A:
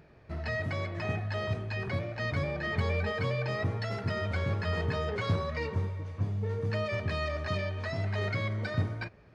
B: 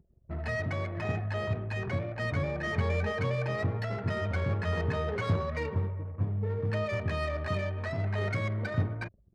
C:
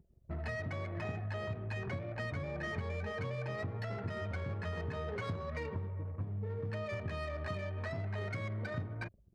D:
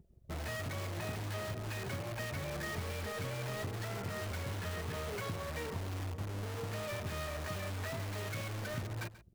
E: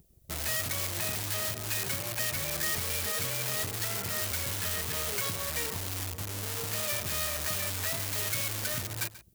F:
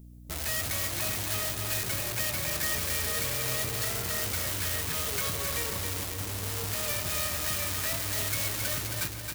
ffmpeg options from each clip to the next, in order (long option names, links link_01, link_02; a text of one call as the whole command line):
ffmpeg -i in.wav -af "adynamicsmooth=sensitivity=5.5:basefreq=2200,anlmdn=0.01,volume=1dB" out.wav
ffmpeg -i in.wav -af "acompressor=threshold=-34dB:ratio=6,volume=-1.5dB" out.wav
ffmpeg -i in.wav -filter_complex "[0:a]asplit=2[link_01][link_02];[link_02]aeval=exprs='(mod(75*val(0)+1,2)-1)/75':channel_layout=same,volume=-3dB[link_03];[link_01][link_03]amix=inputs=2:normalize=0,aecho=1:1:136:0.141,volume=-1.5dB" out.wav
ffmpeg -i in.wav -af "crystalizer=i=6.5:c=0" out.wav
ffmpeg -i in.wav -filter_complex "[0:a]aeval=exprs='val(0)+0.00447*(sin(2*PI*60*n/s)+sin(2*PI*2*60*n/s)/2+sin(2*PI*3*60*n/s)/3+sin(2*PI*4*60*n/s)/4+sin(2*PI*5*60*n/s)/5)':channel_layout=same,asplit=2[link_01][link_02];[link_02]aecho=0:1:270|540|810|1080|1350|1620:0.562|0.27|0.13|0.0622|0.0299|0.0143[link_03];[link_01][link_03]amix=inputs=2:normalize=0" out.wav